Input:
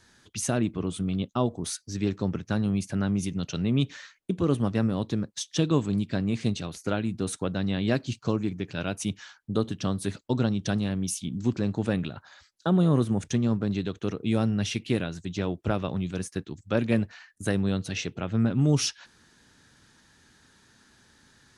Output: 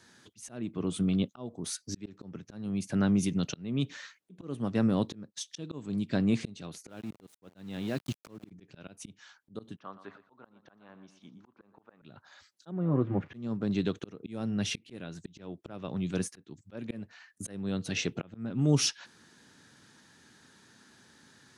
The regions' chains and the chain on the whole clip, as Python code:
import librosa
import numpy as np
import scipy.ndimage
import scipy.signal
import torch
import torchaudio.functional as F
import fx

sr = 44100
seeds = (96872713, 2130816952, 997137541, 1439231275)

y = fx.chain(x, sr, fx.level_steps(step_db=15),
    fx.sample_gate(floor_db=-40.5), at=(6.89, 8.51))
y = fx.chain(y, sr, fx.bandpass_q(hz=1100.0, q=2.2),
    fx.air_absorb(metres=130.0),
    fx.echo_feedback(ms=119, feedback_pct=32, wet_db=-15.5), at=(9.76, 12.02))
y = fx.chain(y, sr, fx.crossing_spikes(level_db=-28.5),
    fx.lowpass(hz=2100.0, slope=24),
    fx.notch_comb(f0_hz=220.0), at=(12.71, 13.34))
y = scipy.signal.sosfilt(scipy.signal.butter(2, 140.0, 'highpass', fs=sr, output='sos'), y)
y = fx.auto_swell(y, sr, attack_ms=521.0)
y = fx.low_shelf(y, sr, hz=460.0, db=3.0)